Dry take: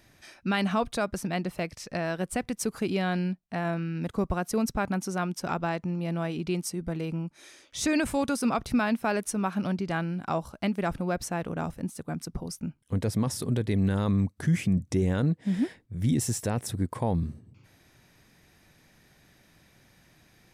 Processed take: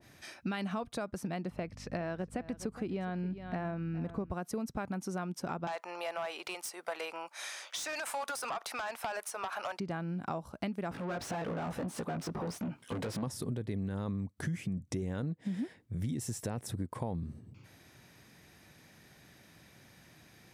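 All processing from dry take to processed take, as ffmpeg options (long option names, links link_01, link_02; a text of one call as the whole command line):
ffmpeg -i in.wav -filter_complex "[0:a]asettb=1/sr,asplit=3[link_01][link_02][link_03];[link_01]atrim=end=1.504[link_04];[link_02]atrim=start=1.5:end=4.31,asetpts=PTS-STARTPTS,afade=type=in:duration=0.004:curve=qsin,afade=type=out:start_time=2.806:duration=0.004:curve=qsin,lowpass=frequency=2600:poles=1,aecho=1:1:413:0.15,atrim=end_sample=123921,aeval=exprs='val(0)+0.00501*(sin(2*PI*50*n/s)+sin(2*PI*2*50*n/s)/2+sin(2*PI*3*50*n/s)/3+sin(2*PI*4*50*n/s)/4+sin(2*PI*5*50*n/s)/5)':channel_layout=same[link_05];[link_03]atrim=start=4.306[link_06];[link_04][link_05]acrossfade=duration=0.004:curve1=hsin:curve2=qsin[link_07];[link_07][link_06]acrossfade=duration=0.004:curve1=qsin:curve2=hsin,asettb=1/sr,asplit=3[link_08][link_09][link_10];[link_08]atrim=end=5.674[link_11];[link_09]atrim=start=5.67:end=9.8,asetpts=PTS-STARTPTS,afade=type=in:duration=0.004:curve=qsin,afade=type=out:start_time=4.126:duration=0.004:curve=qsin,highpass=frequency=690:width=0.5412,highpass=frequency=690:width=1.3066,acompressor=threshold=-33dB:ratio=5:attack=3.2:release=140:knee=1:detection=peak,aeval=exprs='0.0708*sin(PI/2*2.82*val(0)/0.0708)':channel_layout=same[link_12];[link_10]atrim=start=9.796[link_13];[link_11][link_12]acrossfade=duration=0.004:curve1=hsin:curve2=qsin[link_14];[link_14][link_13]acrossfade=duration=0.004:curve1=qsin:curve2=hsin,asettb=1/sr,asplit=3[link_15][link_16][link_17];[link_15]atrim=end=10.914[link_18];[link_16]atrim=start=10.91:end=13.23,asetpts=PTS-STARTPTS,afade=type=in:duration=0.004:curve=qsin,afade=type=out:start_time=2.316:duration=0.004:curve=qsin,flanger=delay=16.5:depth=2.4:speed=1.1,acompressor=threshold=-38dB:ratio=12:attack=3.2:release=140:knee=1:detection=peak,asplit=2[link_19][link_20];[link_20]highpass=frequency=720:poles=1,volume=31dB,asoftclip=type=tanh:threshold=-26.5dB[link_21];[link_19][link_21]amix=inputs=2:normalize=0,lowpass=frequency=2900:poles=1,volume=-6dB[link_22];[link_17]atrim=start=13.226[link_23];[link_18][link_22]acrossfade=duration=0.004:curve1=hsin:curve2=qsin[link_24];[link_24][link_23]acrossfade=duration=0.004:curve1=qsin:curve2=hsin,highpass=68,acompressor=threshold=-35dB:ratio=6,adynamicequalizer=threshold=0.00224:dfrequency=1600:dqfactor=0.7:tfrequency=1600:tqfactor=0.7:attack=5:release=100:ratio=0.375:range=3:mode=cutabove:tftype=highshelf,volume=1.5dB" out.wav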